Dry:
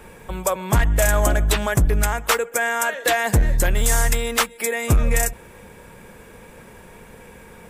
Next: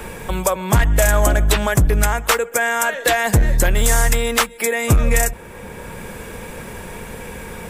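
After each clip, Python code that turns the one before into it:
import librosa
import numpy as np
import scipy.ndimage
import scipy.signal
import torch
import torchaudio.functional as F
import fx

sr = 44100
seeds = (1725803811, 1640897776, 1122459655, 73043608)

y = fx.band_squash(x, sr, depth_pct=40)
y = F.gain(torch.from_numpy(y), 3.0).numpy()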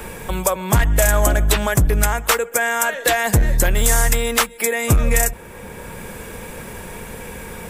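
y = fx.high_shelf(x, sr, hz=8900.0, db=5.0)
y = F.gain(torch.from_numpy(y), -1.0).numpy()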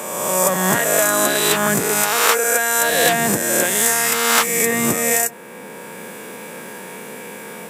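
y = fx.spec_swells(x, sr, rise_s=1.61)
y = scipy.signal.sosfilt(scipy.signal.butter(4, 190.0, 'highpass', fs=sr, output='sos'), y)
y = fx.end_taper(y, sr, db_per_s=470.0)
y = F.gain(torch.from_numpy(y), -2.0).numpy()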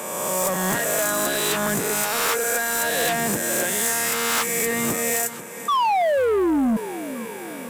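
y = fx.spec_paint(x, sr, seeds[0], shape='fall', start_s=5.68, length_s=1.09, low_hz=210.0, high_hz=1200.0, level_db=-11.0)
y = fx.echo_feedback(y, sr, ms=489, feedback_pct=52, wet_db=-18.5)
y = 10.0 ** (-15.0 / 20.0) * np.tanh(y / 10.0 ** (-15.0 / 20.0))
y = F.gain(torch.from_numpy(y), -2.5).numpy()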